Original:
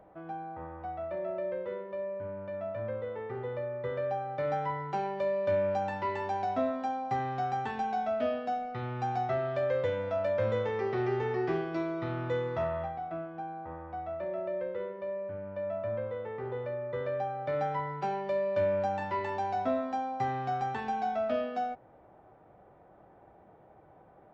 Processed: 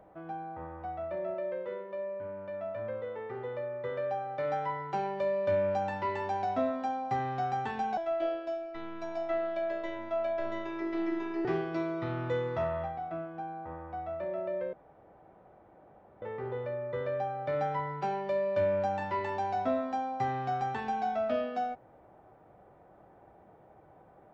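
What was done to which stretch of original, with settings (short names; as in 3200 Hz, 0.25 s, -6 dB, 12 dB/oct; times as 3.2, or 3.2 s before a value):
1.34–4.93 low shelf 170 Hz -9 dB
7.97–11.45 robotiser 332 Hz
14.73–16.22 room tone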